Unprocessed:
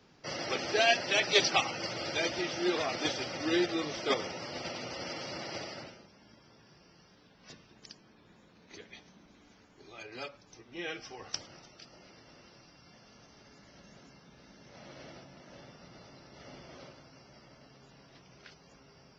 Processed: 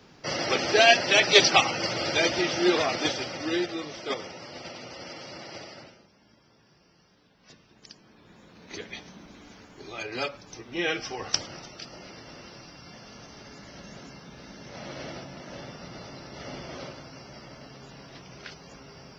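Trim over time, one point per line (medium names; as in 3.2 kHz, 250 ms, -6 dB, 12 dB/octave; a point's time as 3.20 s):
2.73 s +8 dB
3.86 s -1.5 dB
7.51 s -1.5 dB
8.78 s +11 dB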